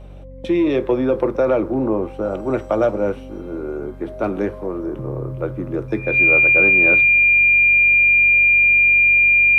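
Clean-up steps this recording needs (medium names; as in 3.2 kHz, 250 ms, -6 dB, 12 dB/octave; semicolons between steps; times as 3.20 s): de-hum 47.1 Hz, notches 4; band-stop 2.4 kHz, Q 30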